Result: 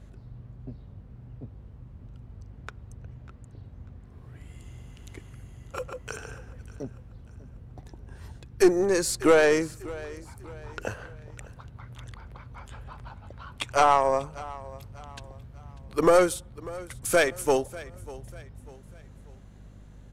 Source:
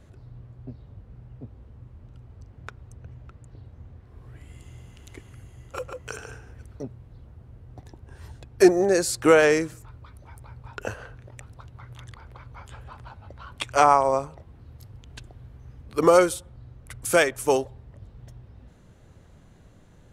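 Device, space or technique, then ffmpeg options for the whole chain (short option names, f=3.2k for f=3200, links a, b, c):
valve amplifier with mains hum: -filter_complex "[0:a]aeval=exprs='(tanh(2.82*val(0)+0.35)-tanh(0.35))/2.82':c=same,aeval=exprs='val(0)+0.00398*(sin(2*PI*50*n/s)+sin(2*PI*2*50*n/s)/2+sin(2*PI*3*50*n/s)/3+sin(2*PI*4*50*n/s)/4+sin(2*PI*5*50*n/s)/5)':c=same,asettb=1/sr,asplit=3[a][b][c];[a]atrim=end=8.414[d];[b]atrim=start=8.41:end=9.05,asetpts=PTS-STARTPTS,afade=t=in:d=0.004:c=qsin,afade=t=out:st=0.636:d=0.004:c=qsin,equalizer=f=670:w=2.9:g=-10[e];[c]atrim=start=9.046[f];[d][e]acrossfade=d=0.004:c1=hsin:c2=qsin[g];[g][f]acrossfade=d=0.004:c1=qsin:c2=hsin,aecho=1:1:594|1188|1782:0.112|0.0438|0.0171"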